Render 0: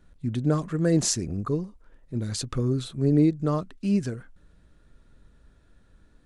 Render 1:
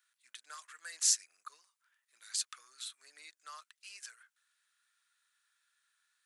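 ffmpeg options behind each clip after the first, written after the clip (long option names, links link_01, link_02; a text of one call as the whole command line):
ffmpeg -i in.wav -af "highpass=frequency=1400:width=0.5412,highpass=frequency=1400:width=1.3066,highshelf=frequency=7200:gain=11,volume=-6.5dB" out.wav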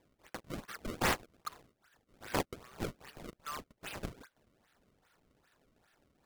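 ffmpeg -i in.wav -af "acompressor=threshold=-38dB:ratio=2.5,acrusher=samples=30:mix=1:aa=0.000001:lfo=1:lforange=48:lforate=2.5,volume=7dB" out.wav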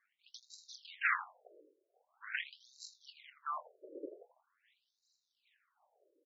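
ffmpeg -i in.wav -filter_complex "[0:a]asplit=2[link_01][link_02];[link_02]adelay=23,volume=-10dB[link_03];[link_01][link_03]amix=inputs=2:normalize=0,asplit=2[link_04][link_05];[link_05]adelay=82,lowpass=frequency=3700:poles=1,volume=-11dB,asplit=2[link_06][link_07];[link_07]adelay=82,lowpass=frequency=3700:poles=1,volume=0.21,asplit=2[link_08][link_09];[link_09]adelay=82,lowpass=frequency=3700:poles=1,volume=0.21[link_10];[link_04][link_06][link_08][link_10]amix=inputs=4:normalize=0,afftfilt=real='re*between(b*sr/1024,410*pow(5400/410,0.5+0.5*sin(2*PI*0.44*pts/sr))/1.41,410*pow(5400/410,0.5+0.5*sin(2*PI*0.44*pts/sr))*1.41)':imag='im*between(b*sr/1024,410*pow(5400/410,0.5+0.5*sin(2*PI*0.44*pts/sr))/1.41,410*pow(5400/410,0.5+0.5*sin(2*PI*0.44*pts/sr))*1.41)':win_size=1024:overlap=0.75,volume=3.5dB" out.wav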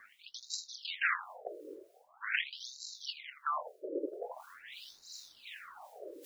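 ffmpeg -i in.wav -filter_complex "[0:a]areverse,acompressor=mode=upward:threshold=-45dB:ratio=2.5,areverse,acrossover=split=1700[link_01][link_02];[link_01]aeval=exprs='val(0)*(1-0.7/2+0.7/2*cos(2*PI*2.8*n/s))':channel_layout=same[link_03];[link_02]aeval=exprs='val(0)*(1-0.7/2-0.7/2*cos(2*PI*2.8*n/s))':channel_layout=same[link_04];[link_03][link_04]amix=inputs=2:normalize=0,acrossover=split=360|3000[link_05][link_06][link_07];[link_06]acompressor=threshold=-46dB:ratio=5[link_08];[link_05][link_08][link_07]amix=inputs=3:normalize=0,volume=13.5dB" out.wav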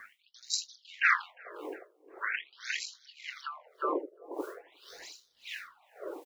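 ffmpeg -i in.wav -filter_complex "[0:a]asplit=2[link_01][link_02];[link_02]adelay=355,lowpass=frequency=2400:poles=1,volume=-5.5dB,asplit=2[link_03][link_04];[link_04]adelay=355,lowpass=frequency=2400:poles=1,volume=0.2,asplit=2[link_05][link_06];[link_06]adelay=355,lowpass=frequency=2400:poles=1,volume=0.2[link_07];[link_03][link_05][link_07]amix=inputs=3:normalize=0[link_08];[link_01][link_08]amix=inputs=2:normalize=0,aeval=exprs='val(0)*pow(10,-23*(0.5-0.5*cos(2*PI*1.8*n/s))/20)':channel_layout=same,volume=8dB" out.wav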